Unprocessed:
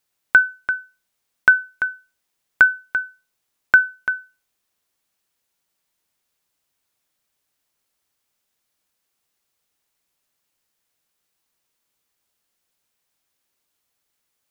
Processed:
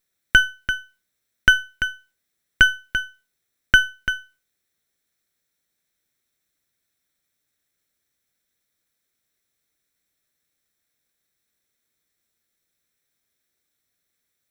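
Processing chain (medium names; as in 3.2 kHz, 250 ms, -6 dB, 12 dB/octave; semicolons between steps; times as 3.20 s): comb filter that takes the minimum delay 0.52 ms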